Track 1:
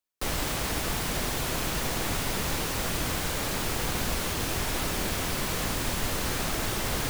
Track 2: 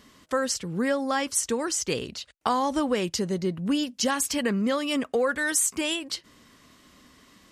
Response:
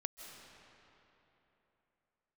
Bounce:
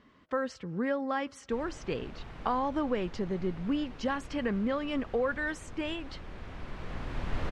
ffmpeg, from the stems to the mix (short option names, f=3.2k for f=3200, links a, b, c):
-filter_complex "[0:a]lowshelf=f=87:g=9,adelay=1300,volume=-4.5dB,asplit=2[a][b];[b]volume=-15.5dB[c];[1:a]volume=-5.5dB,asplit=3[d][e][f];[e]volume=-23.5dB[g];[f]apad=whole_len=370204[h];[a][h]sidechaincompress=threshold=-51dB:ratio=8:attack=16:release=1040[i];[2:a]atrim=start_sample=2205[j];[c][g]amix=inputs=2:normalize=0[k];[k][j]afir=irnorm=-1:irlink=0[l];[i][d][l]amix=inputs=3:normalize=0,lowpass=2.3k"